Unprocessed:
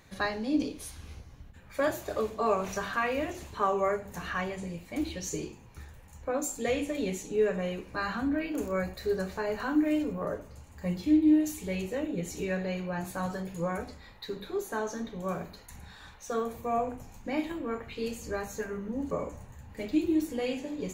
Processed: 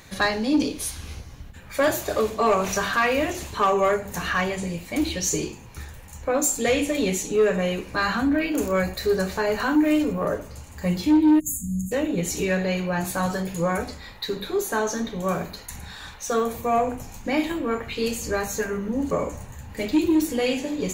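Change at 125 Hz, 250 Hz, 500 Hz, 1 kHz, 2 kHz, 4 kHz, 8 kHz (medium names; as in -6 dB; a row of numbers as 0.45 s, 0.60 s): +8.0 dB, +6.5 dB, +7.5 dB, +8.0 dB, +9.5 dB, +12.0 dB, +13.0 dB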